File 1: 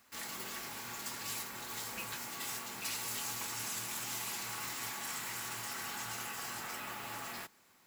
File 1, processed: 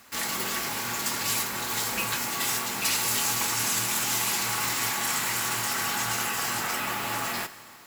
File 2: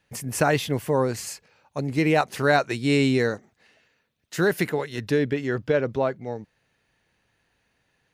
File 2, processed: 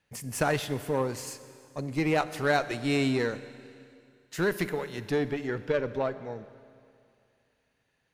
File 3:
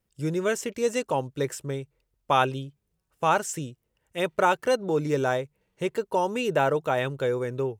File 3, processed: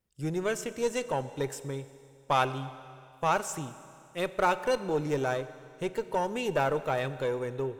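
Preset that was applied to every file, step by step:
harmonic generator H 8 −26 dB, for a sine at −6 dBFS
four-comb reverb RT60 2.4 s, combs from 30 ms, DRR 13.5 dB
normalise the peak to −12 dBFS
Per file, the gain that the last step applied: +13.0, −5.5, −4.5 decibels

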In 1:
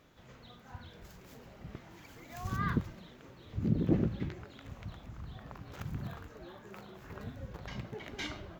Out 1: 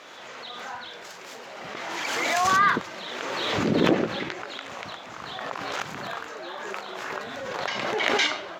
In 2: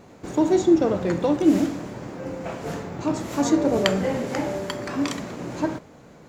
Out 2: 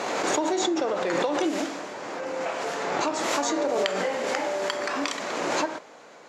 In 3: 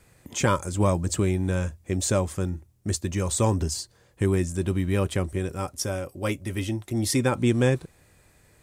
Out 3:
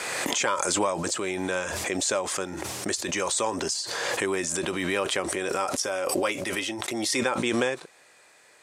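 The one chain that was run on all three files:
high-pass filter 580 Hz 12 dB per octave
high-shelf EQ 4,800 Hz +6.5 dB
downward compressor, threshold −28 dBFS
high-frequency loss of the air 71 metres
background raised ahead of every attack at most 21 dB per second
loudness normalisation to −27 LKFS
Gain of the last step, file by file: +17.0, +5.0, +7.0 decibels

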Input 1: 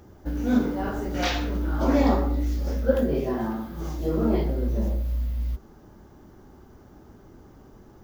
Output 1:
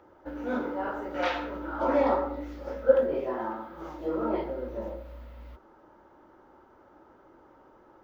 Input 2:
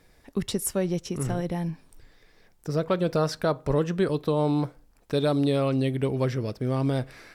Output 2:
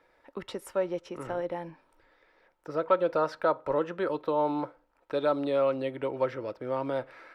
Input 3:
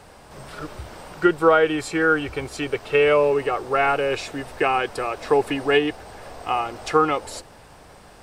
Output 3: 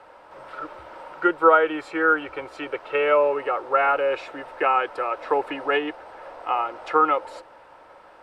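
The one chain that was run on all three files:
three-way crossover with the lows and the highs turned down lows −16 dB, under 500 Hz, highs −17 dB, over 3,300 Hz
hollow resonant body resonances 320/530/920/1,300 Hz, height 10 dB, ringing for 30 ms
level −3 dB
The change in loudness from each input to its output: −4.0, −3.5, −1.0 LU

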